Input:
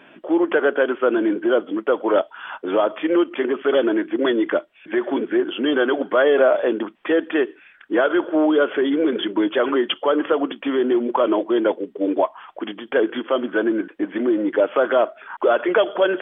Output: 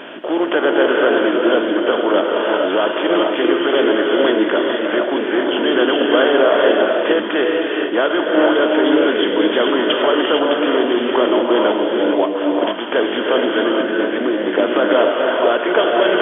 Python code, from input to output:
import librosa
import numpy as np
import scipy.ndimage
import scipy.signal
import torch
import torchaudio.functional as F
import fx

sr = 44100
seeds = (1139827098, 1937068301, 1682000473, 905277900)

y = fx.bin_compress(x, sr, power=0.6)
y = fx.peak_eq(y, sr, hz=3000.0, db=3.5, octaves=0.95)
y = fx.rev_gated(y, sr, seeds[0], gate_ms=490, shape='rising', drr_db=-0.5)
y = y * librosa.db_to_amplitude(-2.5)